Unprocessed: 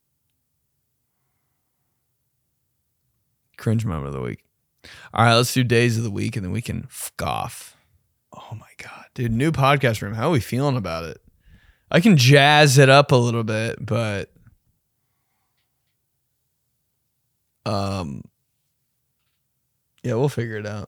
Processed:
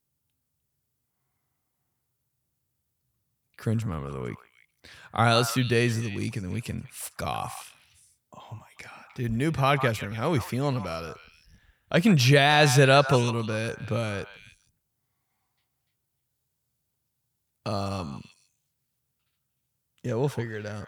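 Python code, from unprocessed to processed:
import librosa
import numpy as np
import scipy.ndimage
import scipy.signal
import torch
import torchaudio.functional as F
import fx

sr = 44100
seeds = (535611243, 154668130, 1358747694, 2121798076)

y = fx.echo_stepped(x, sr, ms=152, hz=1100.0, octaves=1.4, feedback_pct=70, wet_db=-7.0)
y = F.gain(torch.from_numpy(y), -6.0).numpy()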